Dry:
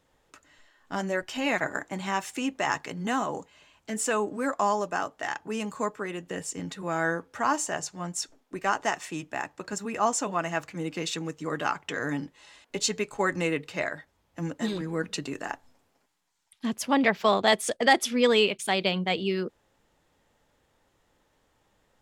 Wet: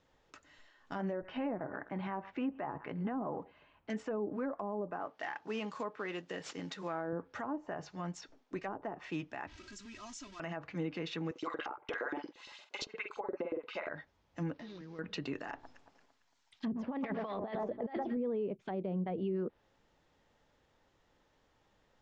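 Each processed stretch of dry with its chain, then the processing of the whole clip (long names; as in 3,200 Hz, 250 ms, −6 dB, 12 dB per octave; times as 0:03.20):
0:01.13–0:03.90: low-pass filter 1,900 Hz + single-tap delay 111 ms −23.5 dB
0:04.99–0:07.13: variable-slope delta modulation 64 kbit/s + high-pass filter 290 Hz 6 dB per octave
0:09.47–0:10.40: converter with a step at zero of −29 dBFS + guitar amp tone stack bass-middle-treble 6-0-2 + comb filter 3.1 ms, depth 94%
0:11.31–0:13.89: auto-filter high-pass saw up 8.6 Hz 320–4,800 Hz + notch filter 1,800 Hz, Q 8.6 + double-tracking delay 46 ms −7.5 dB
0:14.53–0:14.99: variable-slope delta modulation 32 kbit/s + downward compressor 4 to 1, threshold −45 dBFS
0:15.52–0:18.17: mains-hum notches 60/120/180/240/300/360/420 Hz + delay that swaps between a low-pass and a high-pass 113 ms, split 1,400 Hz, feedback 60%, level −12.5 dB + compressor whose output falls as the input rises −27 dBFS, ratio −0.5
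whole clip: treble cut that deepens with the level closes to 470 Hz, closed at −22.5 dBFS; inverse Chebyshev low-pass filter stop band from 11,000 Hz, stop band 40 dB; brickwall limiter −25.5 dBFS; level −3 dB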